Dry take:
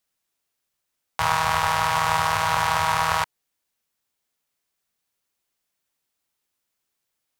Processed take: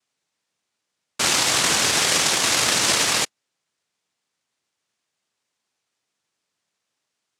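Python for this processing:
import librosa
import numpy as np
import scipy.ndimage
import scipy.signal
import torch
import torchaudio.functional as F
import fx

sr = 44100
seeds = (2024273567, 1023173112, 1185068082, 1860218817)

y = fx.peak_eq(x, sr, hz=210.0, db=12.0, octaves=0.39)
y = fx.noise_vocoder(y, sr, seeds[0], bands=1)
y = y * 10.0 ** (2.0 / 20.0)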